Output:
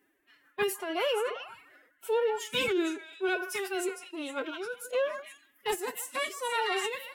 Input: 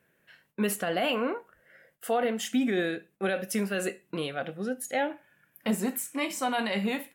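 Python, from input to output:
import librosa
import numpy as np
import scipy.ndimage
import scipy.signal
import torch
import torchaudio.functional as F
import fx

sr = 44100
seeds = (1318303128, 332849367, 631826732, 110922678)

y = fx.echo_stepped(x, sr, ms=154, hz=1100.0, octaves=1.4, feedback_pct=70, wet_db=-2.5)
y = y * (1.0 - 0.47 / 2.0 + 0.47 / 2.0 * np.cos(2.0 * np.pi * 1.8 * (np.arange(len(y)) / sr)))
y = fx.pitch_keep_formants(y, sr, semitones=11.5)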